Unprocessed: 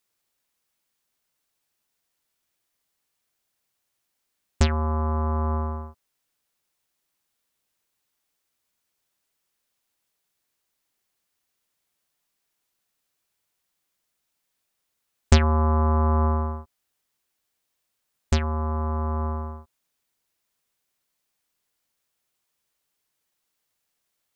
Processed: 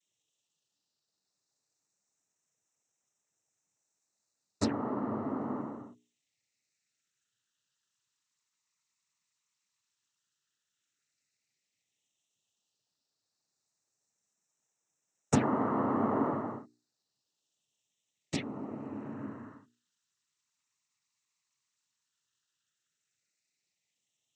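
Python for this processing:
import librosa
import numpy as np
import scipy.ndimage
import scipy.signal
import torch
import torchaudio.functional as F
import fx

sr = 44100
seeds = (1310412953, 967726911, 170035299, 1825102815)

y = fx.phaser_stages(x, sr, stages=12, low_hz=590.0, high_hz=4000.0, hz=0.083, feedback_pct=50)
y = fx.noise_vocoder(y, sr, seeds[0], bands=12)
y = fx.hum_notches(y, sr, base_hz=60, count=7)
y = y * librosa.db_to_amplitude(-4.5)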